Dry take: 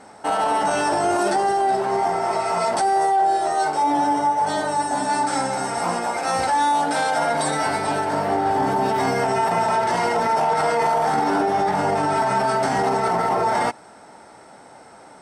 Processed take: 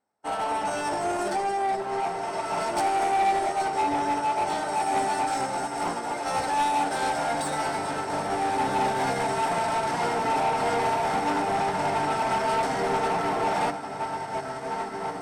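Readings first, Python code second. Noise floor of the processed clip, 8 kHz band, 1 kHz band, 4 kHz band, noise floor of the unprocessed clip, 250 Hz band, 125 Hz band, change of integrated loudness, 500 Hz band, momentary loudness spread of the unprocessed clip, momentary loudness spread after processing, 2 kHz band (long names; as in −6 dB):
−34 dBFS, −5.5 dB, −5.5 dB, −4.0 dB, −46 dBFS, −6.0 dB, −5.5 dB, −6.0 dB, −6.0 dB, 3 LU, 6 LU, −4.5 dB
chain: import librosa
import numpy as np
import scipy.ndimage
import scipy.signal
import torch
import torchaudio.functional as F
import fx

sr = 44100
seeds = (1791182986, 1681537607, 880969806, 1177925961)

y = fx.echo_diffused(x, sr, ms=1980, feedback_pct=51, wet_db=-4)
y = 10.0 ** (-18.0 / 20.0) * np.tanh(y / 10.0 ** (-18.0 / 20.0))
y = fx.upward_expand(y, sr, threshold_db=-44.0, expansion=2.5)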